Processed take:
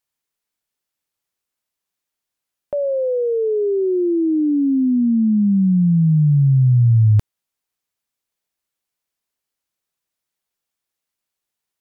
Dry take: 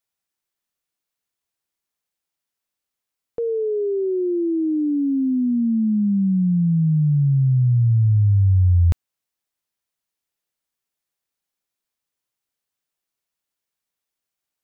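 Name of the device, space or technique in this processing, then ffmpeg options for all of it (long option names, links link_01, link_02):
nightcore: -af "asetrate=54684,aresample=44100,volume=2.5dB"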